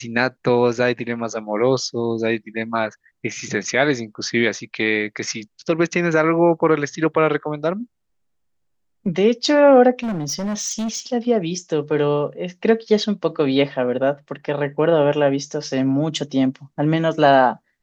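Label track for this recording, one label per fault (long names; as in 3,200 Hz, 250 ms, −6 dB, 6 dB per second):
10.030000	11.130000	clipping −21 dBFS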